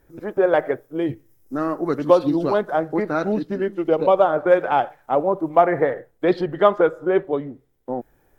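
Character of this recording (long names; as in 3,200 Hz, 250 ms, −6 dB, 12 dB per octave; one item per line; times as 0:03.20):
background noise floor −62 dBFS
spectral slope −2.5 dB per octave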